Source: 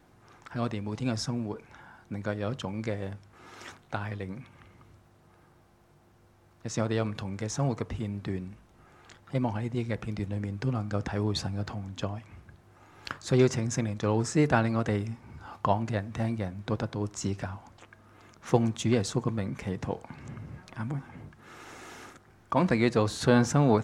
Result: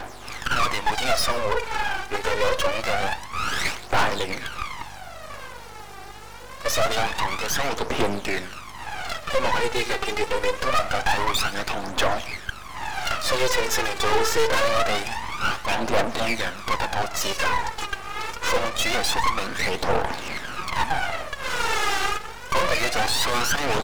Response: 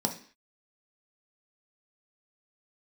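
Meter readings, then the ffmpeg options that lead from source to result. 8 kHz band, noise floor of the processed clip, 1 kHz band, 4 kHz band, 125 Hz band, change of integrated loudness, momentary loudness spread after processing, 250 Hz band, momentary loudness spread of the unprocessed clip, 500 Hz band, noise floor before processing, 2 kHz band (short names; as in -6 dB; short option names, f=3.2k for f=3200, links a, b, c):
+11.5 dB, -39 dBFS, +12.0 dB, +15.5 dB, -6.5 dB, +5.5 dB, 11 LU, -5.0 dB, 20 LU, +5.5 dB, -60 dBFS, +14.5 dB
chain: -filter_complex "[0:a]highpass=580,acrossover=split=5100[a][b];[b]acompressor=threshold=-60dB:ratio=4:attack=1:release=60[c];[a][c]amix=inputs=2:normalize=0,equalizer=f=1.9k:w=1.3:g=-4.5,asplit=2[d][e];[e]acompressor=threshold=-43dB:ratio=6,volume=-3dB[f];[d][f]amix=inputs=2:normalize=0,asplit=2[g][h];[h]highpass=f=720:p=1,volume=31dB,asoftclip=type=tanh:threshold=-12.5dB[i];[g][i]amix=inputs=2:normalize=0,lowpass=f=4.3k:p=1,volume=-6dB,aphaser=in_gain=1:out_gain=1:delay=2.6:decay=0.77:speed=0.25:type=triangular,aeval=exprs='max(val(0),0)':c=same,aeval=exprs='val(0)+0.00355*(sin(2*PI*50*n/s)+sin(2*PI*2*50*n/s)/2+sin(2*PI*3*50*n/s)/3+sin(2*PI*4*50*n/s)/4+sin(2*PI*5*50*n/s)/5)':c=same,asoftclip=type=hard:threshold=-13.5dB,aecho=1:1:127:0.106,volume=1.5dB"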